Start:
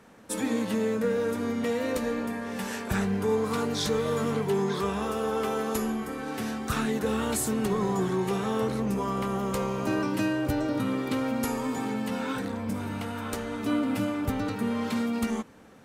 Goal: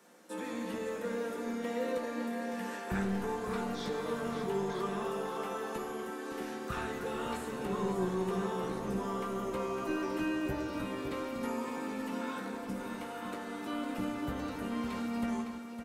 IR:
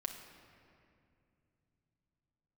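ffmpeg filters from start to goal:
-filter_complex "[0:a]bass=frequency=250:gain=-10,treble=frequency=4000:gain=9,acrossover=split=2900[link_01][link_02];[link_02]acompressor=threshold=-48dB:ratio=4:attack=1:release=60[link_03];[link_01][link_03]amix=inputs=2:normalize=0,lowshelf=frequency=310:gain=11,acrossover=split=190|430|6800[link_04][link_05][link_06][link_07];[link_04]acrusher=bits=4:mix=0:aa=0.5[link_08];[link_05]alimiter=level_in=4dB:limit=-24dB:level=0:latency=1,volume=-4dB[link_09];[link_08][link_09][link_06][link_07]amix=inputs=4:normalize=0,asplit=2[link_10][link_11];[link_11]adelay=16,volume=-8dB[link_12];[link_10][link_12]amix=inputs=2:normalize=0,aecho=1:1:559:0.376[link_13];[1:a]atrim=start_sample=2205,afade=type=out:start_time=0.39:duration=0.01,atrim=end_sample=17640[link_14];[link_13][link_14]afir=irnorm=-1:irlink=0,volume=-6.5dB"

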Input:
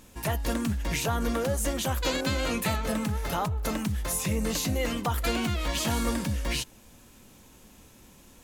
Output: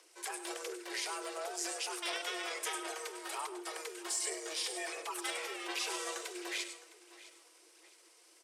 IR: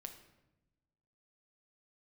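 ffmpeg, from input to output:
-filter_complex "[0:a]asetrate=32097,aresample=44100,atempo=1.37395,aecho=1:1:659|1318|1977:0.126|0.039|0.0121,afreqshift=310,asplit=2[link_01][link_02];[link_02]equalizer=frequency=8500:width=3:gain=13.5[link_03];[1:a]atrim=start_sample=2205,adelay=100[link_04];[link_03][link_04]afir=irnorm=-1:irlink=0,volume=-6.5dB[link_05];[link_01][link_05]amix=inputs=2:normalize=0,aphaser=in_gain=1:out_gain=1:delay=4.2:decay=0.3:speed=1.4:type=sinusoidal,highpass=170,equalizer=frequency=410:width=0.61:gain=-14,volume=-5.5dB"

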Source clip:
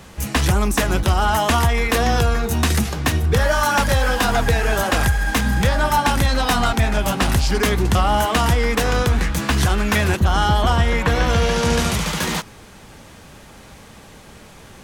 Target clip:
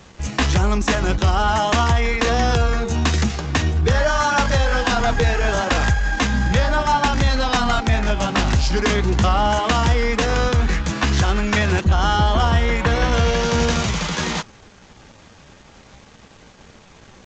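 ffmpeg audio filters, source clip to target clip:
ffmpeg -i in.wav -af "atempo=0.86,aresample=16000,aeval=exprs='sgn(val(0))*max(abs(val(0))-0.00335,0)':channel_layout=same,aresample=44100" out.wav

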